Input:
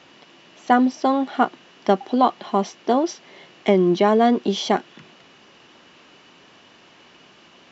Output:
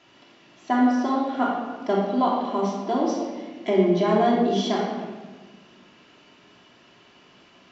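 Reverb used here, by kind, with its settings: simulated room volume 1200 m³, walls mixed, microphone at 3 m; trim -9.5 dB

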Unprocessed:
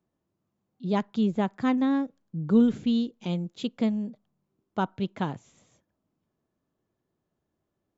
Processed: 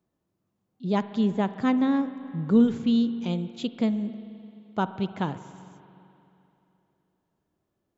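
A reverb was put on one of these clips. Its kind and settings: spring tank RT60 3 s, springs 43/60 ms, chirp 30 ms, DRR 12.5 dB; trim +1 dB

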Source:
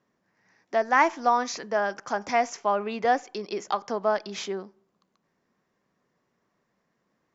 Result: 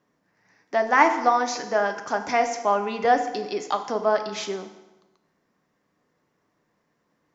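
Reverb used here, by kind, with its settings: FDN reverb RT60 1.1 s, low-frequency decay 1×, high-frequency decay 0.8×, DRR 6 dB; trim +2 dB

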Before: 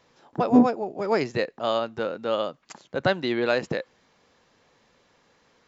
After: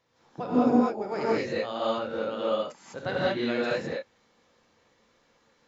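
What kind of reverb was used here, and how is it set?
gated-style reverb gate 230 ms rising, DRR -8 dB; trim -11.5 dB

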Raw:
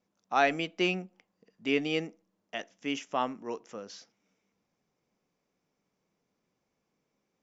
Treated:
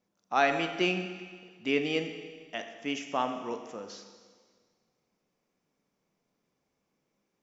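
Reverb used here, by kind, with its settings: Schroeder reverb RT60 1.7 s, combs from 27 ms, DRR 7 dB

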